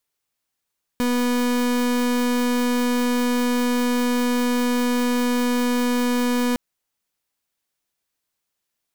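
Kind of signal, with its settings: pulse 245 Hz, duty 36% -20.5 dBFS 5.56 s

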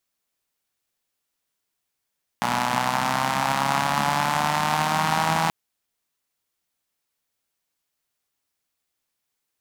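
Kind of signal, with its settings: four-cylinder engine model, changing speed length 3.08 s, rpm 3600, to 4900, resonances 200/850 Hz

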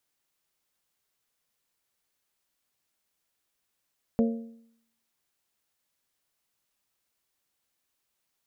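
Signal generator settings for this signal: metal hit bell, lowest mode 229 Hz, modes 4, decay 0.70 s, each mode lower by 6 dB, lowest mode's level -18.5 dB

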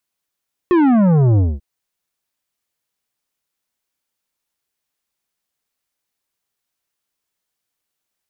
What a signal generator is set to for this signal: sub drop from 370 Hz, over 0.89 s, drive 11 dB, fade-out 0.22 s, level -11 dB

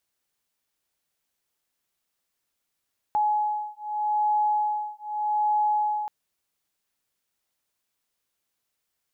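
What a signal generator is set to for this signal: beating tones 843 Hz, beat 0.82 Hz, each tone -25.5 dBFS 2.93 s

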